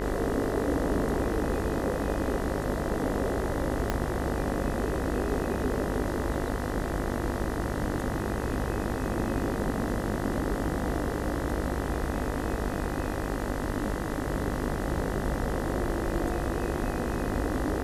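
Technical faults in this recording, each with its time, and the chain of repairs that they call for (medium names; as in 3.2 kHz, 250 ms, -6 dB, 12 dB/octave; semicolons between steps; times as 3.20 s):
buzz 50 Hz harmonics 40 -34 dBFS
3.90 s: pop -13 dBFS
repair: de-click; de-hum 50 Hz, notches 40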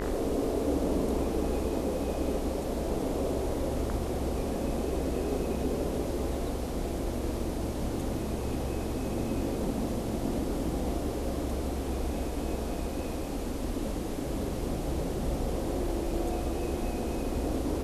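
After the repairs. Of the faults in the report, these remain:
3.90 s: pop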